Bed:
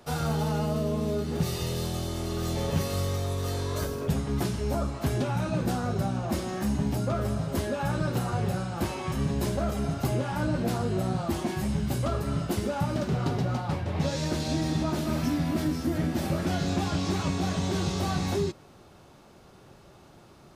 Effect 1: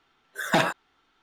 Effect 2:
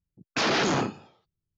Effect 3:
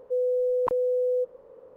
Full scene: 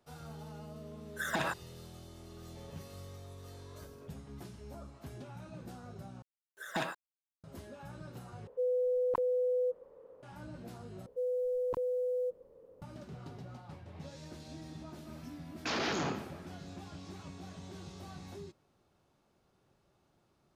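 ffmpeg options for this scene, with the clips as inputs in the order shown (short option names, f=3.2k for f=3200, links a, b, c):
-filter_complex "[1:a]asplit=2[a][b];[3:a]asplit=2[c][d];[0:a]volume=-19.5dB[e];[a]acompressor=threshold=-24dB:ratio=6:attack=3.2:release=140:knee=1:detection=peak[f];[b]acrusher=bits=8:mix=0:aa=0.000001[g];[d]equalizer=f=1.2k:w=0.44:g=-12.5[h];[2:a]asplit=2[i][j];[j]adelay=149,lowpass=f=4k:p=1,volume=-12.5dB,asplit=2[k][l];[l]adelay=149,lowpass=f=4k:p=1,volume=0.5,asplit=2[m][n];[n]adelay=149,lowpass=f=4k:p=1,volume=0.5,asplit=2[o][p];[p]adelay=149,lowpass=f=4k:p=1,volume=0.5,asplit=2[q][r];[r]adelay=149,lowpass=f=4k:p=1,volume=0.5[s];[i][k][m][o][q][s]amix=inputs=6:normalize=0[t];[e]asplit=4[u][v][w][x];[u]atrim=end=6.224[y];[g]atrim=end=1.22,asetpts=PTS-STARTPTS,volume=-13.5dB[z];[v]atrim=start=7.436:end=8.474[aa];[c]atrim=end=1.76,asetpts=PTS-STARTPTS,volume=-6dB[ab];[w]atrim=start=10.226:end=11.064[ac];[h]atrim=end=1.76,asetpts=PTS-STARTPTS,volume=-1.5dB[ad];[x]atrim=start=12.816[ae];[f]atrim=end=1.22,asetpts=PTS-STARTPTS,volume=-4.5dB,afade=t=in:d=0.004:c=hsin,afade=t=out:st=1.216:d=0.004:c=hsin,adelay=810[af];[t]atrim=end=1.57,asetpts=PTS-STARTPTS,volume=-10dB,afade=t=in:d=0.004:c=hsin,afade=t=out:st=1.566:d=0.004:c=hsin,adelay=15290[ag];[y][z]acrossfade=d=0.004:c1=hsin:c2=hsin[ah];[ah][aa]acrossfade=d=0.004:c1=hsin:c2=hsin[ai];[ai][ab]acrossfade=d=0.004:c1=hsin:c2=hsin[aj];[aj][ac]acrossfade=d=0.004:c1=hsin:c2=hsin[ak];[ak][ad]acrossfade=d=0.004:c1=hsin:c2=hsin[al];[al][ae]acrossfade=d=0.004:c1=hsin:c2=hsin[am];[am][af][ag]amix=inputs=3:normalize=0"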